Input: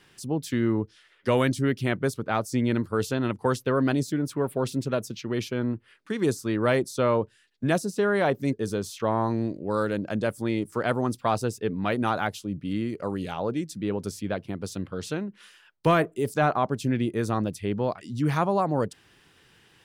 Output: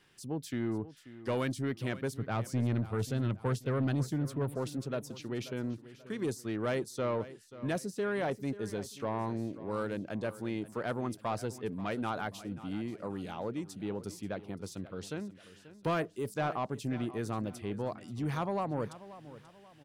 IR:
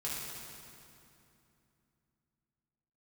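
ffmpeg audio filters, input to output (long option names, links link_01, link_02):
-filter_complex "[0:a]asettb=1/sr,asplit=3[link_01][link_02][link_03];[link_01]atrim=end=2.154[link_04];[link_02]atrim=start=2.15:end=4.56,asetpts=PTS-STARTPTS,afade=type=in:duration=0.004:curve=qsin,afade=type=out:start_time=2.406:duration=0.004:curve=qsin,equalizer=frequency=120:width=1:gain=9.5[link_05];[link_03]atrim=start=4.556[link_06];[link_04][link_05]acrossfade=duration=0.004:curve1=hsin:curve2=qsin[link_07];[link_07][link_06]acrossfade=duration=0.004:curve1=qsin:curve2=hsin,asoftclip=type=tanh:threshold=-16.5dB,aecho=1:1:535|1070|1605:0.158|0.0618|0.0241,volume=-8dB"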